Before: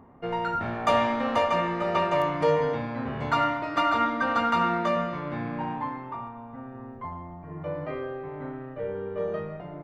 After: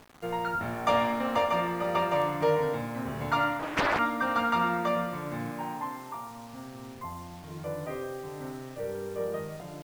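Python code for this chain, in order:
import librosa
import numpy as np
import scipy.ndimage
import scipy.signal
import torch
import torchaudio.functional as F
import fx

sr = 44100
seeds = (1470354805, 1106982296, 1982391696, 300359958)

y = fx.low_shelf(x, sr, hz=160.0, db=-10.0, at=(5.51, 6.31))
y = fx.quant_dither(y, sr, seeds[0], bits=8, dither='none')
y = fx.doppler_dist(y, sr, depth_ms=0.8, at=(3.59, 3.99))
y = y * 10.0 ** (-2.5 / 20.0)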